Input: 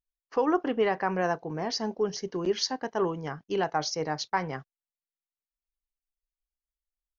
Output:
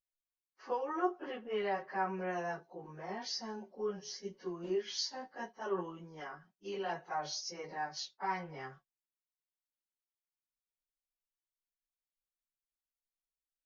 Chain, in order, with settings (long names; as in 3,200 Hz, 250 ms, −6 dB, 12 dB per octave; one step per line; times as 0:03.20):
low-shelf EQ 340 Hz −7.5 dB
comb filter 5.4 ms, depth 49%
time stretch by phase vocoder 1.9×
level −6.5 dB